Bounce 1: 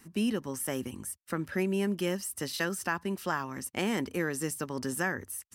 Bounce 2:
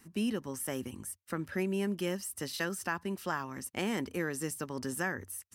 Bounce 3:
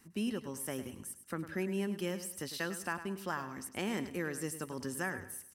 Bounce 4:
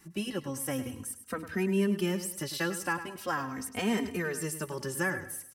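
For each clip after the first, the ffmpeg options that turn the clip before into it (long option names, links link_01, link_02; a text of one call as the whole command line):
ffmpeg -i in.wav -af "equalizer=frequency=92:width=5.5:gain=4,volume=-3dB" out.wav
ffmpeg -i in.wav -af "aecho=1:1:103|206|309|412:0.251|0.0879|0.0308|0.0108,volume=-3dB" out.wav
ffmpeg -i in.wav -filter_complex "[0:a]asplit=2[link_01][link_02];[link_02]adelay=3,afreqshift=-0.41[link_03];[link_01][link_03]amix=inputs=2:normalize=1,volume=8.5dB" out.wav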